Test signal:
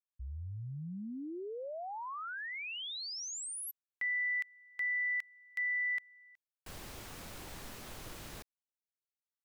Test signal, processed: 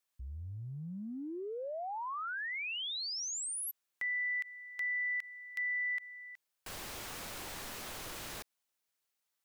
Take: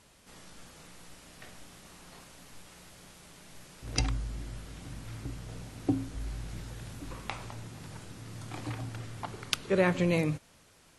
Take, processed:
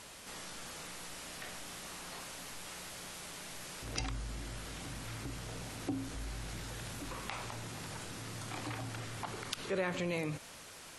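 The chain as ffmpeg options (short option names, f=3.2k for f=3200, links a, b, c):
-af "lowshelf=f=320:g=-9,acompressor=threshold=-55dB:ratio=2:attack=1.1:release=30:detection=rms,volume=11dB"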